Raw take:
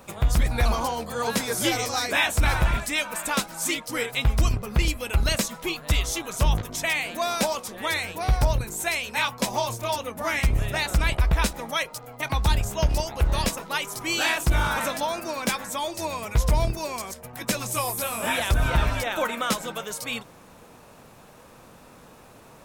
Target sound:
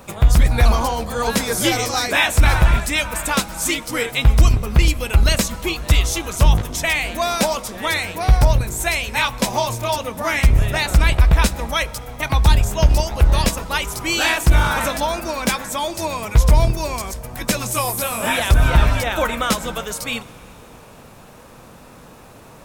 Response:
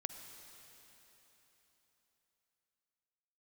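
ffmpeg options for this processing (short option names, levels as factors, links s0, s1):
-filter_complex "[0:a]asplit=2[s0][s1];[1:a]atrim=start_sample=2205,lowshelf=f=210:g=11[s2];[s1][s2]afir=irnorm=-1:irlink=0,volume=0.355[s3];[s0][s3]amix=inputs=2:normalize=0,volume=1.5"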